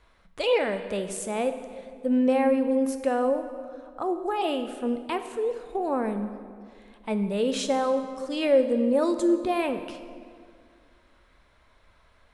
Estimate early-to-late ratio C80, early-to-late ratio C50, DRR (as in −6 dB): 10.5 dB, 9.5 dB, 8.0 dB